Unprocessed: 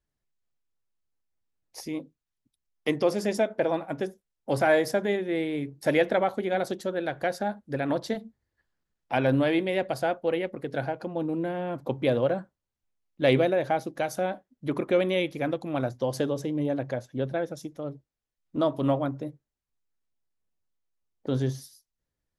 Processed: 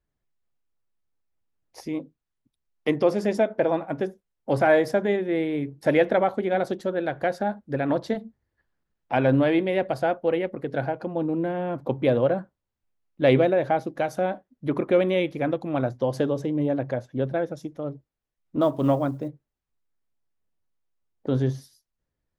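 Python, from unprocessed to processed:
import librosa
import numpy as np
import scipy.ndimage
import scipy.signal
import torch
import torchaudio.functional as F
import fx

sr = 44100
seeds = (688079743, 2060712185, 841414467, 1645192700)

y = fx.high_shelf(x, sr, hz=3700.0, db=-11.5)
y = fx.quant_companded(y, sr, bits=8, at=(18.61, 19.28))
y = y * 10.0 ** (3.5 / 20.0)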